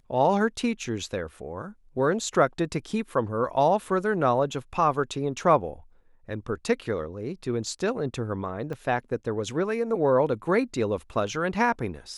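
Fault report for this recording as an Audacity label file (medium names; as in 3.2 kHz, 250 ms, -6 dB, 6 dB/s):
8.730000	8.730000	dropout 2.7 ms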